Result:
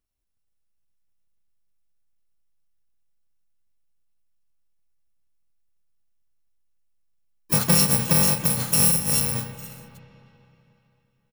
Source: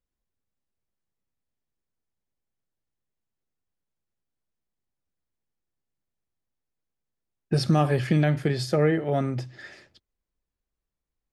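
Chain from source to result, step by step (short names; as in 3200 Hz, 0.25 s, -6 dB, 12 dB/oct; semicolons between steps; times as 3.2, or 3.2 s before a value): FFT order left unsorted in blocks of 128 samples; spring tank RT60 3.2 s, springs 31/45/50 ms, chirp 45 ms, DRR 9.5 dB; harmoniser -5 st -13 dB, +4 st -10 dB, +12 st -16 dB; gain +2 dB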